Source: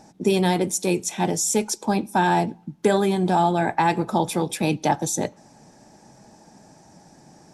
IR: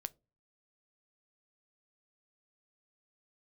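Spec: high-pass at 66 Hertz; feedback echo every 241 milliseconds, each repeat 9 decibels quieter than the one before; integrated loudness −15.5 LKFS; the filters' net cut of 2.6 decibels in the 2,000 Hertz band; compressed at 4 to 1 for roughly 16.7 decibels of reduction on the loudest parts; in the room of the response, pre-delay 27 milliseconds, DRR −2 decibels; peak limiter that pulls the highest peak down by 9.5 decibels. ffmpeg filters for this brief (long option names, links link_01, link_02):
-filter_complex "[0:a]highpass=66,equalizer=frequency=2000:width_type=o:gain=-3.5,acompressor=threshold=-36dB:ratio=4,alimiter=level_in=7dB:limit=-24dB:level=0:latency=1,volume=-7dB,aecho=1:1:241|482|723|964:0.355|0.124|0.0435|0.0152,asplit=2[link_01][link_02];[1:a]atrim=start_sample=2205,adelay=27[link_03];[link_02][link_03]afir=irnorm=-1:irlink=0,volume=5dB[link_04];[link_01][link_04]amix=inputs=2:normalize=0,volume=22dB"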